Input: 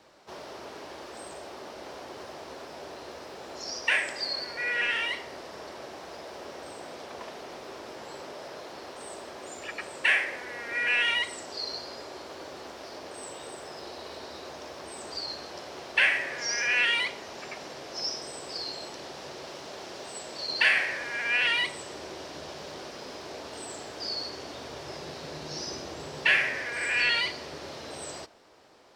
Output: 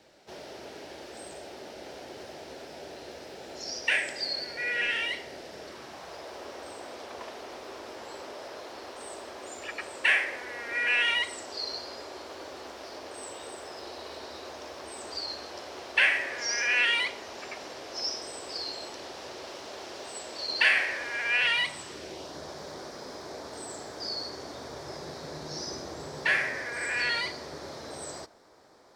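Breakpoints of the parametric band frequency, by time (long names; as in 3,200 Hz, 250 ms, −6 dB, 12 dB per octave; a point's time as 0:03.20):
parametric band −10.5 dB 0.5 octaves
0:05.61 1,100 Hz
0:06.28 160 Hz
0:21.07 160 Hz
0:21.83 490 Hz
0:22.37 2,800 Hz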